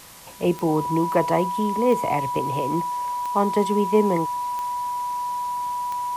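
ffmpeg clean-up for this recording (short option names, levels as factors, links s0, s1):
-af "adeclick=t=4,bandreject=f=980:w=30,afwtdn=0.0063"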